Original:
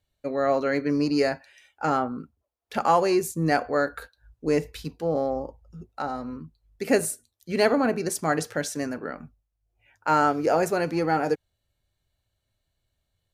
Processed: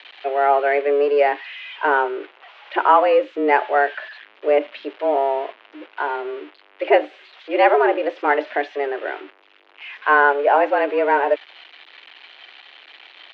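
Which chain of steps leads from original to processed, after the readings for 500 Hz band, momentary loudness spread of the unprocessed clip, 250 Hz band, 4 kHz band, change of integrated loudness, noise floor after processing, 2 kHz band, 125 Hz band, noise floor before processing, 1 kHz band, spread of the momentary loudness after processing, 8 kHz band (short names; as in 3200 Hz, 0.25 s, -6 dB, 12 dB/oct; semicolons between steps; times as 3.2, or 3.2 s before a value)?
+7.0 dB, 16 LU, -3.0 dB, +3.0 dB, +6.5 dB, -53 dBFS, +10.0 dB, under -40 dB, -79 dBFS, +8.5 dB, 17 LU, under -30 dB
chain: switching spikes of -23.5 dBFS; mistuned SSB +140 Hz 170–2900 Hz; gain +6.5 dB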